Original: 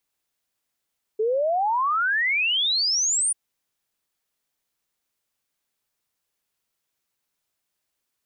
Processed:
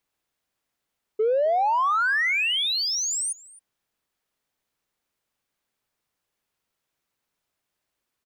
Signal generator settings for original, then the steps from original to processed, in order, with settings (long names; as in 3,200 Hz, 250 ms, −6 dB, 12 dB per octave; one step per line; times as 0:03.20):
exponential sine sweep 420 Hz → 9,600 Hz 2.14 s −19.5 dBFS
high-shelf EQ 3,500 Hz −8 dB
in parallel at −7 dB: soft clipping −30 dBFS
on the sum: single-tap delay 264 ms −21.5 dB